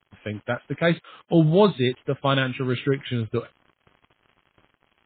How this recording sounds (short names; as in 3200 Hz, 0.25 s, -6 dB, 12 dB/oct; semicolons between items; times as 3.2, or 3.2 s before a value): a quantiser's noise floor 8-bit, dither none; MP3